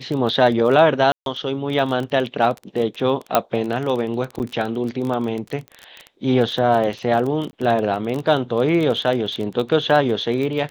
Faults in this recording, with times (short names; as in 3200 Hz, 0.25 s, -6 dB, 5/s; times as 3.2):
crackle 23/s -24 dBFS
1.12–1.26 gap 0.142 s
3.35 pop -1 dBFS
4.39–4.4 gap 9.3 ms
7.51–7.53 gap 20 ms